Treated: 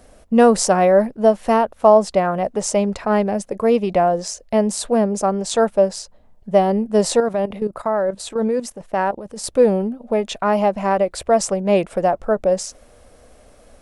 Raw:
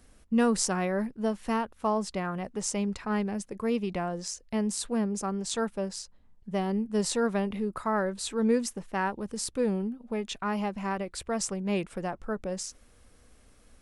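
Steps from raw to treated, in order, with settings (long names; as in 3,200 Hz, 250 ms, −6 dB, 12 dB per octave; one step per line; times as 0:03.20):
parametric band 620 Hz +13.5 dB 0.87 octaves
0:07.20–0:09.44: output level in coarse steps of 13 dB
level +7.5 dB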